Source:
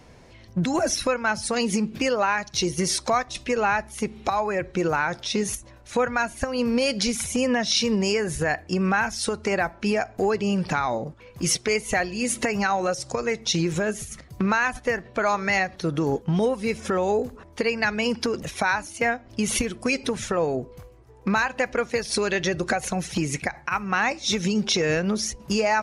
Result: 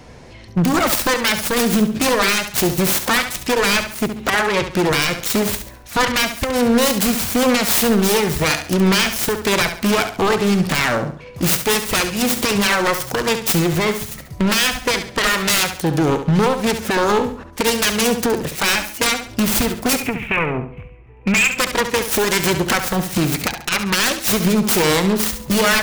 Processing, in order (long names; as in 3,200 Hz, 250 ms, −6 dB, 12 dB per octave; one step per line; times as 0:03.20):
phase distortion by the signal itself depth 0.68 ms
0:19.96–0:21.58: drawn EQ curve 170 Hz 0 dB, 430 Hz −7 dB, 1,600 Hz −5 dB, 2,500 Hz +11 dB, 4,400 Hz −26 dB
wave folding −18.5 dBFS
flutter between parallel walls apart 11.8 metres, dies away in 0.44 s
level +8.5 dB